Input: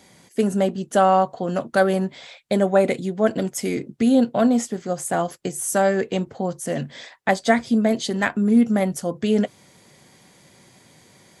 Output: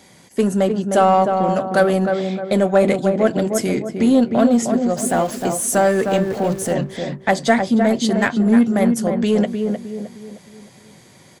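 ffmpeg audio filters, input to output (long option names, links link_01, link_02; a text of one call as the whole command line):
ffmpeg -i in.wav -filter_complex "[0:a]asettb=1/sr,asplit=3[link_01][link_02][link_03];[link_01]atrim=end=4.974[link_04];[link_02]atrim=start=4.97:end=6.73,asetpts=PTS-STARTPTS,afade=type=in:duration=0.004:curve=qsin,afade=type=out:start_time=1.756:duration=0.004:curve=qsin,aeval=exprs='val(0)+0.5*0.0178*sgn(val(0))':channel_layout=same[link_05];[link_03]atrim=start=6.726[link_06];[link_04][link_05]acrossfade=duration=0.004:curve1=hsin:curve2=qsin[link_07];[link_07][link_06]acrossfade=duration=0.004:curve1=qsin:curve2=hsin,asplit=2[link_08][link_09];[link_09]adelay=308,lowpass=frequency=1200:poles=1,volume=-5dB,asplit=2[link_10][link_11];[link_11]adelay=308,lowpass=frequency=1200:poles=1,volume=0.44,asplit=2[link_12][link_13];[link_13]adelay=308,lowpass=frequency=1200:poles=1,volume=0.44,asplit=2[link_14][link_15];[link_15]adelay=308,lowpass=frequency=1200:poles=1,volume=0.44,asplit=2[link_16][link_17];[link_17]adelay=308,lowpass=frequency=1200:poles=1,volume=0.44[link_18];[link_08][link_10][link_12][link_14][link_16][link_18]amix=inputs=6:normalize=0,asplit=2[link_19][link_20];[link_20]asoftclip=type=hard:threshold=-19dB,volume=-9dB[link_21];[link_19][link_21]amix=inputs=2:normalize=0,volume=1dB" out.wav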